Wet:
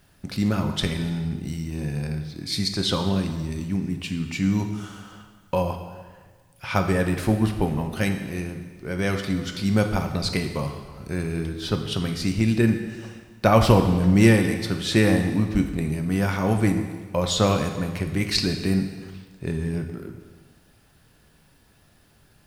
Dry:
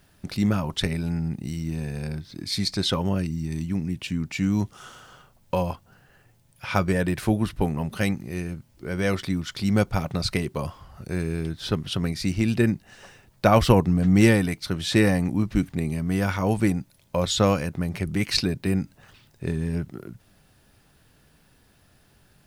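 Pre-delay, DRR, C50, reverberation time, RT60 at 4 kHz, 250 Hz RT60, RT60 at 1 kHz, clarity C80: 5 ms, 5.0 dB, 7.5 dB, 1.5 s, 1.4 s, 1.5 s, 1.5 s, 9.0 dB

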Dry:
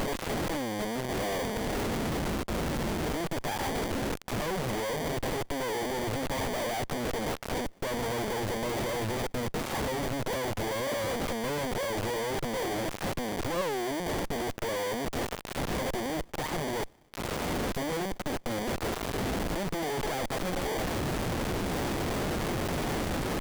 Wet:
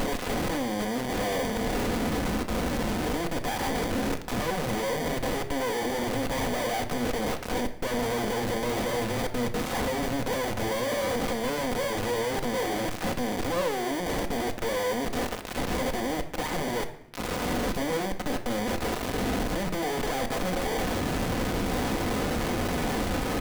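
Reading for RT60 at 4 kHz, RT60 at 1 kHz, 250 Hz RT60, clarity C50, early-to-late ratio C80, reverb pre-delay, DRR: 0.60 s, 0.75 s, 1.0 s, 12.0 dB, 15.0 dB, 4 ms, 5.0 dB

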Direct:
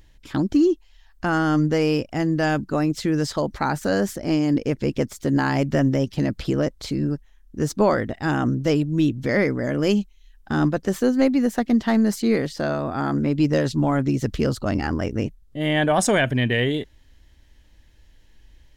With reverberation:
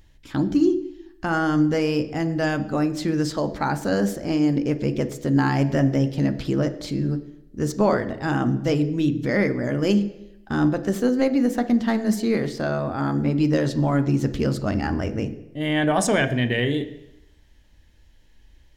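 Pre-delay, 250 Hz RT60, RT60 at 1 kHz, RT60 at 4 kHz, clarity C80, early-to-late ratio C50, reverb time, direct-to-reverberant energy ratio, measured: 11 ms, 0.85 s, 0.90 s, 0.90 s, 15.5 dB, 13.5 dB, 0.90 s, 8.5 dB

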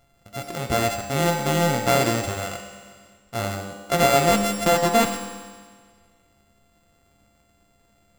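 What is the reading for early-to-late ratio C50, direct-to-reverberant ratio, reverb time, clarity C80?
5.0 dB, 2.5 dB, 1.7 s, 6.0 dB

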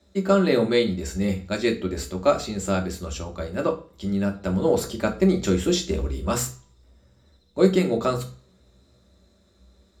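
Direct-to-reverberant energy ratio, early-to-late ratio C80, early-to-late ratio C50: 2.0 dB, 18.0 dB, 12.5 dB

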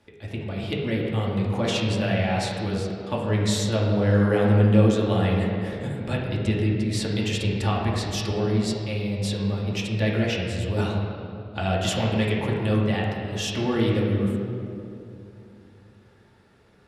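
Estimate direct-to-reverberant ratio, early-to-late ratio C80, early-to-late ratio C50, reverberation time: -4.0 dB, 2.0 dB, 0.5 dB, 2.8 s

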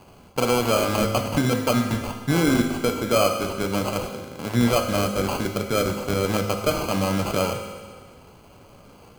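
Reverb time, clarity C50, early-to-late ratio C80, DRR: 1.6 s, 6.0 dB, 7.5 dB, 3.5 dB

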